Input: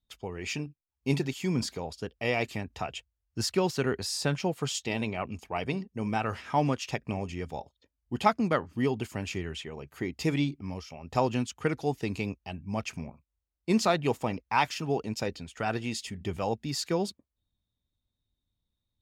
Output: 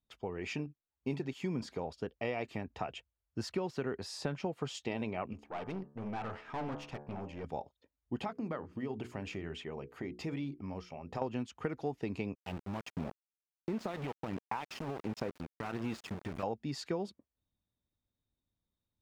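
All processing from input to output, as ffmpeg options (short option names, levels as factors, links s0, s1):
-filter_complex "[0:a]asettb=1/sr,asplit=3[s0][s1][s2];[s0]atrim=end=5.334[s3];[s1]atrim=start=5.33:end=7.44,asetpts=PTS-STARTPTS,afade=t=in:d=0.004:c=qsin,afade=t=out:st=2.106:d=0.004:c=qsin,highshelf=f=6400:g=-5,bandreject=f=72.34:t=h:w=4,bandreject=f=144.68:t=h:w=4,bandreject=f=217.02:t=h:w=4,bandreject=f=289.36:t=h:w=4,bandreject=f=361.7:t=h:w=4,bandreject=f=434.04:t=h:w=4,bandreject=f=506.38:t=h:w=4,bandreject=f=578.72:t=h:w=4,bandreject=f=651.06:t=h:w=4,bandreject=f=723.4:t=h:w=4,bandreject=f=795.74:t=h:w=4,bandreject=f=868.08:t=h:w=4,bandreject=f=940.42:t=h:w=4,bandreject=f=1012.76:t=h:w=4,bandreject=f=1085.1:t=h:w=4,bandreject=f=1157.44:t=h:w=4,bandreject=f=1229.78:t=h:w=4,bandreject=f=1302.12:t=h:w=4,bandreject=f=1374.46:t=h:w=4,bandreject=f=1446.8:t=h:w=4,bandreject=f=1519.14:t=h:w=4,bandreject=f=1591.48:t=h:w=4,bandreject=f=1663.82:t=h:w=4,bandreject=f=1736.16:t=h:w=4,aeval=exprs='(tanh(50.1*val(0)+0.7)-tanh(0.7))/50.1':c=same[s4];[s2]atrim=start=7.436[s5];[s3][s4]acrossfade=d=0.004:c1=hsin:c2=qsin[s6];[s6][s5]acrossfade=d=0.004:c1=qsin:c2=hsin,asettb=1/sr,asplit=3[s7][s8][s9];[s7]atrim=end=8.244[s10];[s8]atrim=start=8.24:end=11.22,asetpts=PTS-STARTPTS,afade=t=in:d=0.004:c=qsin,afade=t=out:st=2.976:d=0.004:c=qsin,acompressor=threshold=0.0251:ratio=5:attack=3.2:release=140:knee=1:detection=peak,bandreject=f=60:t=h:w=6,bandreject=f=120:t=h:w=6,bandreject=f=180:t=h:w=6,bandreject=f=240:t=h:w=6,bandreject=f=300:t=h:w=6,bandreject=f=360:t=h:w=6,bandreject=f=420:t=h:w=6,bandreject=f=480:t=h:w=6[s11];[s9]atrim=start=11.216[s12];[s10][s11]acrossfade=d=0.004:c1=hsin:c2=qsin[s13];[s13][s12]acrossfade=d=0.004:c1=qsin:c2=hsin,asettb=1/sr,asplit=3[s14][s15][s16];[s14]atrim=end=12.354[s17];[s15]atrim=start=12.35:end=16.43,asetpts=PTS-STARTPTS,afade=t=in:d=0.004:c=qsin,afade=t=out:st=4.076:d=0.004:c=qsin,acompressor=threshold=0.0251:ratio=6:attack=3.2:release=140:knee=1:detection=peak,aphaser=in_gain=1:out_gain=1:delay=1.1:decay=0.44:speed=1.4:type=sinusoidal,aeval=exprs='val(0)*gte(abs(val(0)),0.015)':c=same[s18];[s16]atrim=start=16.426[s19];[s17][s18]acrossfade=d=0.004:c1=hsin:c2=qsin[s20];[s20][s19]acrossfade=d=0.004:c1=qsin:c2=hsin,lowpass=f=1300:p=1,lowshelf=f=120:g=-10,acompressor=threshold=0.0224:ratio=6,volume=1.12"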